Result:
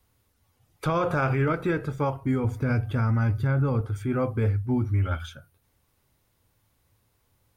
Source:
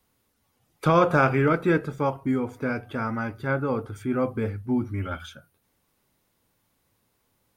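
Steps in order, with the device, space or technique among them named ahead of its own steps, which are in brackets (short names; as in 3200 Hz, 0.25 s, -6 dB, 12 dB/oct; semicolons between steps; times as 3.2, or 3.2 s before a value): 2.44–3.81 tone controls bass +9 dB, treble +3 dB; car stereo with a boomy subwoofer (resonant low shelf 140 Hz +7 dB, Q 1.5; limiter -16.5 dBFS, peak gain reduction 8 dB)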